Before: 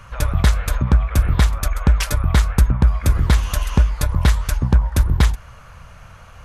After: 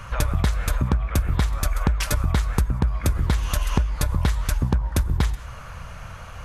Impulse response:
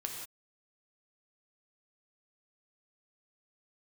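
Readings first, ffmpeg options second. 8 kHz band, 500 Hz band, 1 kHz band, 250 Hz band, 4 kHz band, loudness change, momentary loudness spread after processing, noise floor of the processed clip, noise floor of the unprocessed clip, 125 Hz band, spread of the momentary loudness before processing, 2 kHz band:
-3.0 dB, -2.5 dB, -3.0 dB, -3.5 dB, -4.5 dB, -5.5 dB, 15 LU, -38 dBFS, -42 dBFS, -5.5 dB, 4 LU, -4.5 dB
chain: -filter_complex "[0:a]asplit=2[a][b];[1:a]atrim=start_sample=2205[c];[b][c]afir=irnorm=-1:irlink=0,volume=-15dB[d];[a][d]amix=inputs=2:normalize=0,acompressor=threshold=-21dB:ratio=6,volume=3dB"

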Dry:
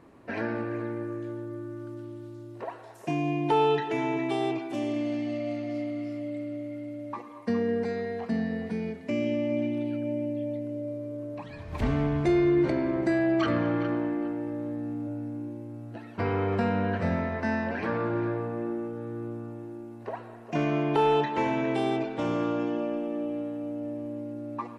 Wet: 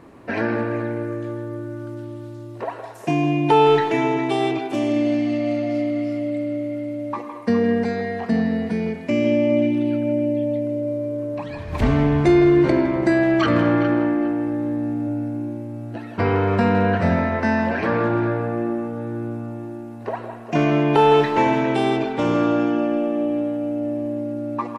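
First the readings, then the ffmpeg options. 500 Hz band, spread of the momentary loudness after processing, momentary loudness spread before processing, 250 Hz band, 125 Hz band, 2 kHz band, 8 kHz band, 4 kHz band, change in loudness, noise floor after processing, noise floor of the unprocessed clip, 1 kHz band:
+8.5 dB, 14 LU, 15 LU, +8.5 dB, +8.5 dB, +9.0 dB, n/a, +8.5 dB, +8.5 dB, -35 dBFS, -45 dBFS, +9.0 dB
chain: -filter_complex "[0:a]asplit=2[a][b];[b]adelay=160,highpass=300,lowpass=3.4k,asoftclip=type=hard:threshold=-23dB,volume=-9dB[c];[a][c]amix=inputs=2:normalize=0,volume=8.5dB"

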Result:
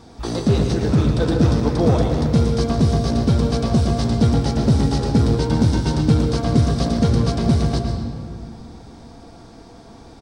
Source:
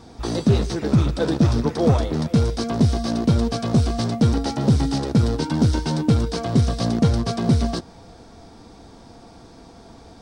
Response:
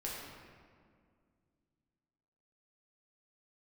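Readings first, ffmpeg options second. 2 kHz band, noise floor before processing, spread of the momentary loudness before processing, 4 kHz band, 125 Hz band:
+1.5 dB, -46 dBFS, 3 LU, +1.0 dB, +2.5 dB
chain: -filter_complex "[0:a]asplit=2[a][b];[b]adelay=110.8,volume=-9dB,highshelf=f=4k:g=-2.49[c];[a][c]amix=inputs=2:normalize=0,asplit=2[d][e];[1:a]atrim=start_sample=2205,adelay=130[f];[e][f]afir=irnorm=-1:irlink=0,volume=-6.5dB[g];[d][g]amix=inputs=2:normalize=0"

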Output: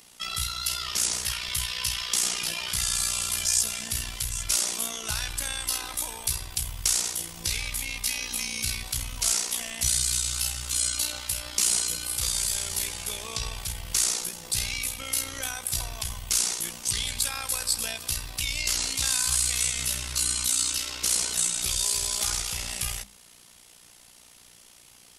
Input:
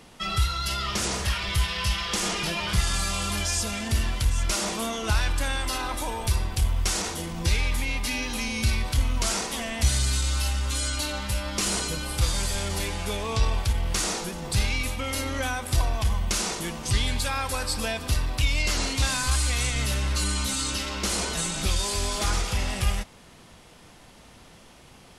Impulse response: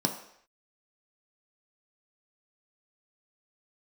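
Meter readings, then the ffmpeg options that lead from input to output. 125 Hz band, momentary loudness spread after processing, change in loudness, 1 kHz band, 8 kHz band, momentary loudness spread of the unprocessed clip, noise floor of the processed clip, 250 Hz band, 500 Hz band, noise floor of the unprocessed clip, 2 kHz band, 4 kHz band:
-12.5 dB, 7 LU, +0.5 dB, -8.5 dB, +5.5 dB, 4 LU, -53 dBFS, -13.0 dB, -11.0 dB, -51 dBFS, -4.5 dB, +0.5 dB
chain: -af "crystalizer=i=7:c=0,bandreject=f=50:t=h:w=6,bandreject=f=100:t=h:w=6,bandreject=f=150:t=h:w=6,bandreject=f=200:t=h:w=6,bandreject=f=250:t=h:w=6,tremolo=f=60:d=0.71,volume=-9dB"

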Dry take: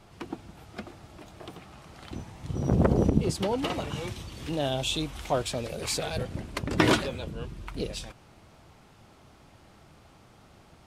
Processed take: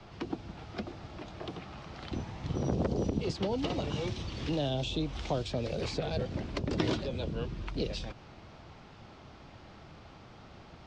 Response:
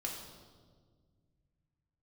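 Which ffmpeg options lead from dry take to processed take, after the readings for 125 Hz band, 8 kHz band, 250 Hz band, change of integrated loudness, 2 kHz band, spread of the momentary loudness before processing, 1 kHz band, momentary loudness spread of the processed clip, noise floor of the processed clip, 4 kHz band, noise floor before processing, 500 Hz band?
-4.0 dB, -12.5 dB, -4.5 dB, -6.0 dB, -8.5 dB, 22 LU, -6.5 dB, 21 LU, -53 dBFS, -5.5 dB, -56 dBFS, -4.0 dB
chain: -filter_complex "[0:a]acrossover=split=160|340|690|3500[a][b][c][d][e];[a]acompressor=threshold=-39dB:ratio=4[f];[b]acompressor=threshold=-42dB:ratio=4[g];[c]acompressor=threshold=-39dB:ratio=4[h];[d]acompressor=threshold=-50dB:ratio=4[i];[e]acompressor=threshold=-44dB:ratio=4[j];[f][g][h][i][j]amix=inputs=5:normalize=0,lowpass=f=5.5k:w=0.5412,lowpass=f=5.5k:w=1.3066,volume=3.5dB"

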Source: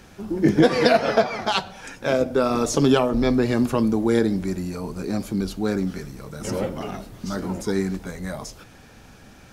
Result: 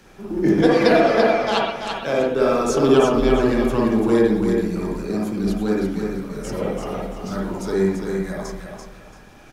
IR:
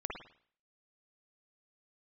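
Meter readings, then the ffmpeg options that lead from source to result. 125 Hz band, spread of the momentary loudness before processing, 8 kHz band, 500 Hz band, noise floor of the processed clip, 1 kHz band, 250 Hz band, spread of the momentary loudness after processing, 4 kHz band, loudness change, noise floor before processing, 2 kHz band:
0.0 dB, 15 LU, -1.5 dB, +4.0 dB, -45 dBFS, +3.0 dB, +2.0 dB, 14 LU, -0.5 dB, +2.5 dB, -48 dBFS, +2.5 dB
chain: -filter_complex "[0:a]acrossover=split=120|1200[a][b][c];[a]acrusher=bits=4:mode=log:mix=0:aa=0.000001[d];[d][b][c]amix=inputs=3:normalize=0,equalizer=f=67:w=2.5:g=-11.5,aecho=1:1:338|676|1014:0.501|0.135|0.0365[e];[1:a]atrim=start_sample=2205,asetrate=42336,aresample=44100[f];[e][f]afir=irnorm=-1:irlink=0"

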